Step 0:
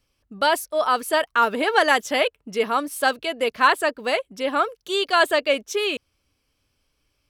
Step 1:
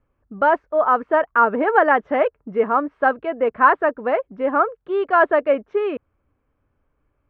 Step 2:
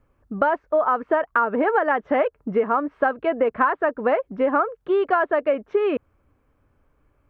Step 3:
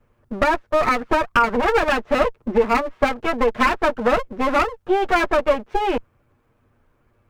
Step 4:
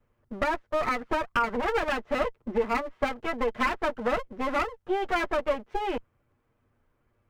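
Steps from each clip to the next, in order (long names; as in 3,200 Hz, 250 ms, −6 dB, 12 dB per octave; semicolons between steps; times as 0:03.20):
low-pass filter 1,600 Hz 24 dB per octave; level +4 dB
downward compressor 10 to 1, threshold −22 dBFS, peak gain reduction 14 dB; level +5.5 dB
lower of the sound and its delayed copy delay 8.5 ms; level +4 dB
hollow resonant body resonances 2,000/3,100 Hz, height 6 dB; level −9 dB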